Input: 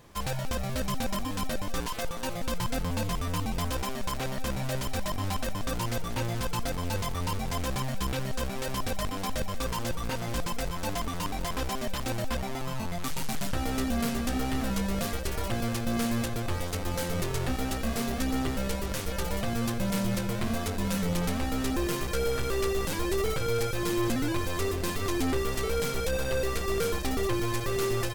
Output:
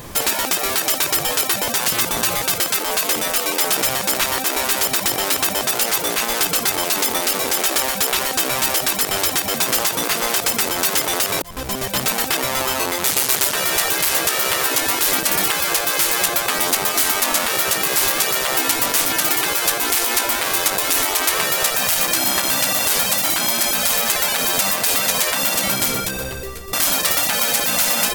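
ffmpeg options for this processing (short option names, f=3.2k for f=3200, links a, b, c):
-filter_complex "[0:a]asplit=3[a][b][c];[a]atrim=end=11.42,asetpts=PTS-STARTPTS,afade=t=out:st=11.416:d=0.004:c=hsin[d];[b]atrim=start=11.42:end=26.73,asetpts=PTS-STARTPTS,afade=t=in:d=0.97,afade=t=out:st=14.08:d=1.23:c=qua:silence=0.0707946[e];[c]atrim=start=26.73,asetpts=PTS-STARTPTS,afade=t=in:d=0.004:c=hsin:silence=0.0707946[f];[d][e][f]concat=n=3:v=0:a=1,afftfilt=real='re*lt(hypot(re,im),0.0562)':imag='im*lt(hypot(re,im),0.0562)':win_size=1024:overlap=0.75,highshelf=f=9.1k:g=11,alimiter=level_in=23.5dB:limit=-1dB:release=50:level=0:latency=1,volume=-5dB"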